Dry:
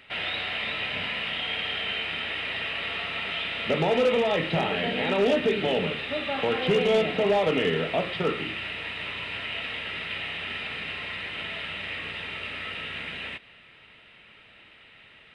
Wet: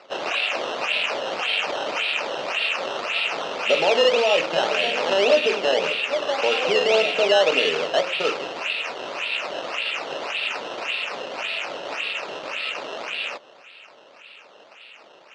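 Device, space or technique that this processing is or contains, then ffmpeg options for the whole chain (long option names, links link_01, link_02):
circuit-bent sampling toy: -af "acrusher=samples=13:mix=1:aa=0.000001:lfo=1:lforange=13:lforate=1.8,highpass=480,equalizer=frequency=570:width_type=q:width=4:gain=6,equalizer=frequency=1900:width_type=q:width=4:gain=-6,equalizer=frequency=2700:width_type=q:width=4:gain=10,lowpass=frequency=5500:width=0.5412,lowpass=frequency=5500:width=1.3066,volume=4.5dB"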